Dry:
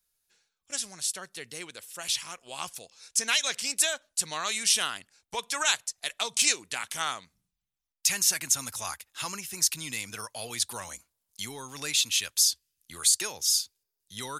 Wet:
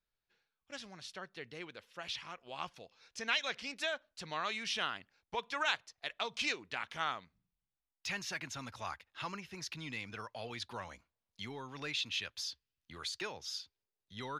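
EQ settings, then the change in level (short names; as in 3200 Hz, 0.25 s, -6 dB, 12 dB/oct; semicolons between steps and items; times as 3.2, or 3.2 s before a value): air absorption 280 m; -2.5 dB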